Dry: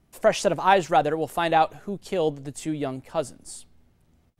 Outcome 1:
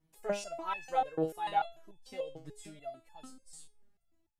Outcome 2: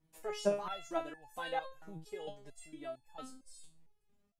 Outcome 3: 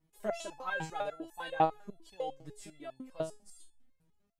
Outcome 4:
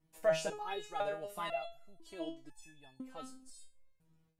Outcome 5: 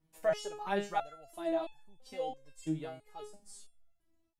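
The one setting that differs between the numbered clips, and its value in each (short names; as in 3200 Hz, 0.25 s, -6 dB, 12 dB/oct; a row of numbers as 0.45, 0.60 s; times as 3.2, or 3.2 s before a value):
stepped resonator, rate: 6.8, 4.4, 10, 2, 3 Hz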